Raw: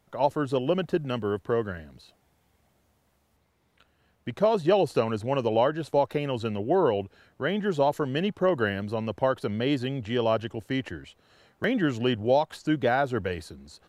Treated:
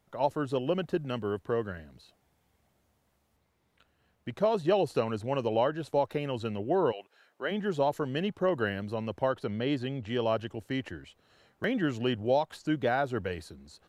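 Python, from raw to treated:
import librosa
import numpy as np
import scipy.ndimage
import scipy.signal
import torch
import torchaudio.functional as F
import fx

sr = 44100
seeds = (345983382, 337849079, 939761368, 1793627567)

y = fx.highpass(x, sr, hz=fx.line((6.91, 1000.0), (7.5, 320.0)), slope=12, at=(6.91, 7.5), fade=0.02)
y = fx.high_shelf(y, sr, hz=8000.0, db=-8.5, at=(9.33, 10.08))
y = F.gain(torch.from_numpy(y), -4.0).numpy()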